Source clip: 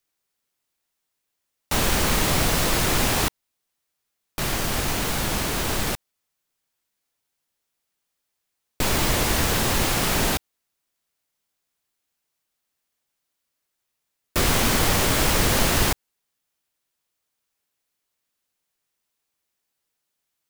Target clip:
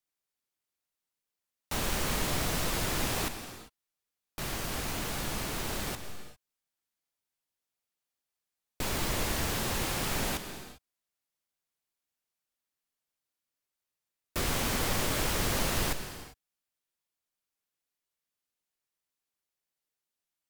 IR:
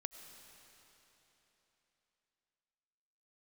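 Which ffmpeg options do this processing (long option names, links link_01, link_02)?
-filter_complex "[1:a]atrim=start_sample=2205,afade=type=out:start_time=0.42:duration=0.01,atrim=end_sample=18963,asetrate=40131,aresample=44100[link_01];[0:a][link_01]afir=irnorm=-1:irlink=0,volume=-7dB"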